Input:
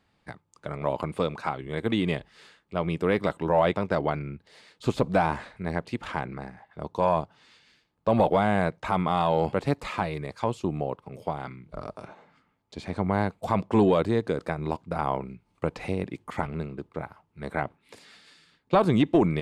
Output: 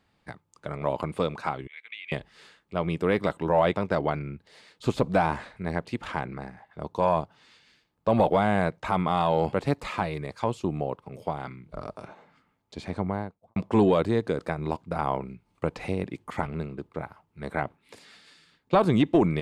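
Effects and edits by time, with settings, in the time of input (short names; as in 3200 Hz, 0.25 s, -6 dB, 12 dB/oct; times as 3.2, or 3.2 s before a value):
1.67–2.12 ladder band-pass 2500 Hz, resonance 75%
12.82–13.56 studio fade out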